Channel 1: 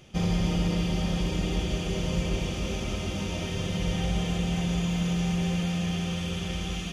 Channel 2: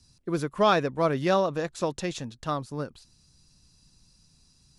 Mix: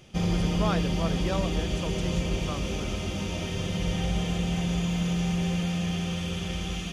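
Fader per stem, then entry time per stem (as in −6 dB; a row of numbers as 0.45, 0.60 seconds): 0.0, −9.0 decibels; 0.00, 0.00 seconds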